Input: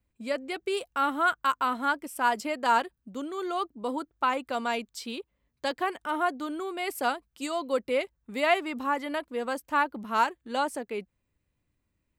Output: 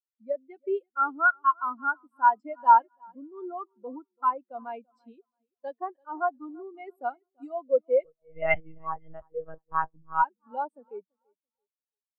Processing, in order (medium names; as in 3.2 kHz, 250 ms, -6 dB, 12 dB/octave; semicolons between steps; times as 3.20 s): feedback delay 335 ms, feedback 47%, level -13 dB; 8.04–10.23 s: monotone LPC vocoder at 8 kHz 160 Hz; spectral contrast expander 2.5:1; trim -1.5 dB